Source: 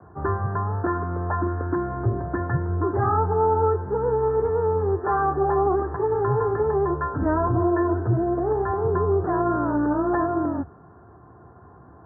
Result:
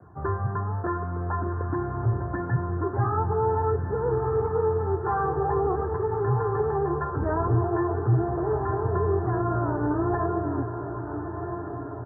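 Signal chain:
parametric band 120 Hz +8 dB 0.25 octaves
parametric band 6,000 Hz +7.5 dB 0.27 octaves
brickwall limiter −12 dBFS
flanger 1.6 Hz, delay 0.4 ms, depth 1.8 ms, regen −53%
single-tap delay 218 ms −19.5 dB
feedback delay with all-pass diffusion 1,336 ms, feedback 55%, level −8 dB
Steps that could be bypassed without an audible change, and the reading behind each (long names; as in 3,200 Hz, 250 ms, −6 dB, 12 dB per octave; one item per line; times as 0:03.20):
parametric band 6,000 Hz: nothing at its input above 1,800 Hz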